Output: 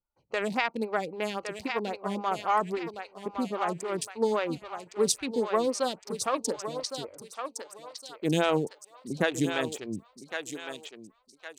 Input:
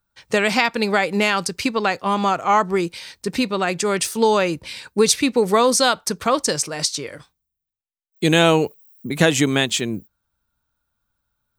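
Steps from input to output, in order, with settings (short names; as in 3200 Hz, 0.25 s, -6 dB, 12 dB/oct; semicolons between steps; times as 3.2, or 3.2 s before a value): Wiener smoothing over 25 samples; thinning echo 1.112 s, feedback 43%, high-pass 650 Hz, level -5.5 dB; photocell phaser 3.7 Hz; gain -7.5 dB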